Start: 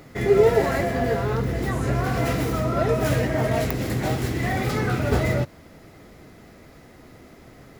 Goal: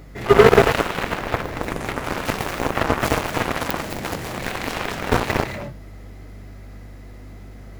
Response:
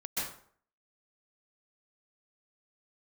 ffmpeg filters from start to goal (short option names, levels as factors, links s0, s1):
-filter_complex "[0:a]aeval=exprs='val(0)+0.01*(sin(2*PI*50*n/s)+sin(2*PI*2*50*n/s)/2+sin(2*PI*3*50*n/s)/3+sin(2*PI*4*50*n/s)/4+sin(2*PI*5*50*n/s)/5)':c=same,asplit=2[s0][s1];[1:a]atrim=start_sample=2205,afade=t=out:st=0.25:d=0.01,atrim=end_sample=11466,adelay=83[s2];[s1][s2]afir=irnorm=-1:irlink=0,volume=0.531[s3];[s0][s3]amix=inputs=2:normalize=0,aeval=exprs='0.631*(cos(1*acos(clip(val(0)/0.631,-1,1)))-cos(1*PI/2))+0.141*(cos(7*acos(clip(val(0)/0.631,-1,1)))-cos(7*PI/2))':c=same,volume=1.5"